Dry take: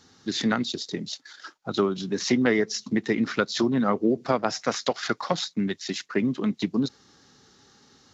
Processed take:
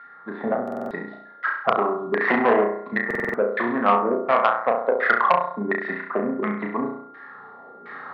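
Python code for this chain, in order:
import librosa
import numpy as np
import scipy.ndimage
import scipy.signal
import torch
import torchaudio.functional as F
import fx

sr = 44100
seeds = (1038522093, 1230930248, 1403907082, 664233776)

p1 = fx.recorder_agc(x, sr, target_db=-11.5, rise_db_per_s=9.9, max_gain_db=30)
p2 = fx.env_lowpass_down(p1, sr, base_hz=2000.0, full_db=-20.0)
p3 = fx.leveller(p2, sr, passes=2, at=(2.21, 2.64))
p4 = fx.filter_lfo_lowpass(p3, sr, shape='saw_down', hz=1.4, low_hz=380.0, high_hz=2200.0, q=2.5)
p5 = p4 + 10.0 ** (-43.0 / 20.0) * np.sin(2.0 * np.pi * 1400.0 * np.arange(len(p4)) / sr)
p6 = fx.cabinet(p5, sr, low_hz=300.0, low_slope=12, high_hz=3600.0, hz=(320.0, 670.0, 1100.0, 1900.0, 2900.0), db=(-10, 5, 7, 9, -8))
p7 = p6 + fx.room_flutter(p6, sr, wall_m=5.8, rt60_s=0.62, dry=0)
p8 = fx.buffer_glitch(p7, sr, at_s=(0.63, 3.06), block=2048, repeats=5)
p9 = fx.transformer_sat(p8, sr, knee_hz=1100.0)
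y = p9 * librosa.db_to_amplitude(-1.0)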